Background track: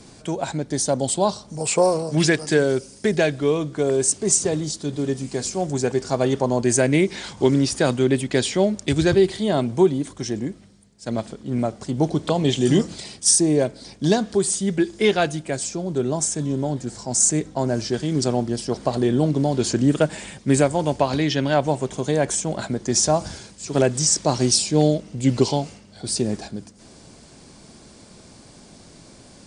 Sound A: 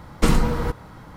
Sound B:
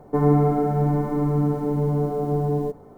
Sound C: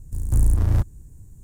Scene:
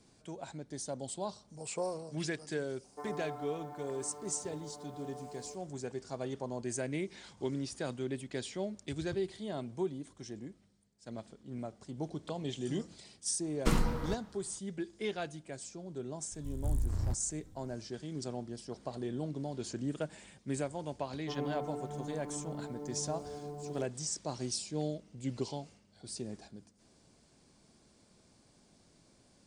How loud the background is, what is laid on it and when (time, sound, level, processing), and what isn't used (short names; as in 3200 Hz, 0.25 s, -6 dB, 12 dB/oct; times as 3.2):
background track -18.5 dB
2.84 add B -15 dB + HPF 680 Hz
13.43 add A -12 dB + three-band expander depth 40%
16.32 add C -14.5 dB
21.14 add B -17.5 dB + low shelf 150 Hz -12 dB